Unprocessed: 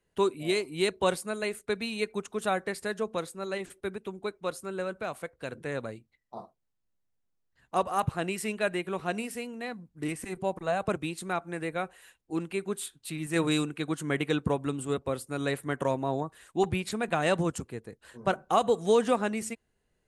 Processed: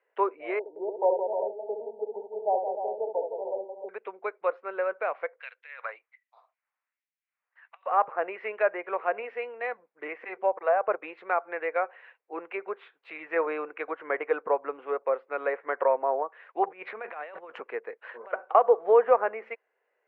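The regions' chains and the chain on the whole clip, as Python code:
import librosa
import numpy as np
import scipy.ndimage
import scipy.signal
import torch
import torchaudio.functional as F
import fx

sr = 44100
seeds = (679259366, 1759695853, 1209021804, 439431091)

y = fx.chain(x, sr, fx.brickwall_bandstop(low_hz=960.0, high_hz=7800.0),
    fx.tilt_shelf(db=-4.0, hz=1100.0),
    fx.echo_multitap(ms=(67, 170, 303, 375), db=(-6.5, -7.5, -8.5, -11.0)), at=(0.59, 3.89))
y = fx.chain(y, sr, fx.over_compress(threshold_db=-35.0, ratio=-0.5),
    fx.filter_lfo_highpass(shape='sine', hz=1.3, low_hz=990.0, high_hz=3900.0, q=1.2), at=(5.4, 7.86))
y = fx.chain(y, sr, fx.highpass(hz=92.0, slope=12),
    fx.peak_eq(hz=590.0, db=-2.5, octaves=1.1),
    fx.over_compress(threshold_db=-35.0, ratio=-0.5), at=(16.67, 18.55))
y = fx.env_lowpass_down(y, sr, base_hz=1500.0, full_db=-26.5)
y = scipy.signal.sosfilt(scipy.signal.ellip(3, 1.0, 70, [480.0, 2300.0], 'bandpass', fs=sr, output='sos'), y)
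y = y * librosa.db_to_amplitude(6.5)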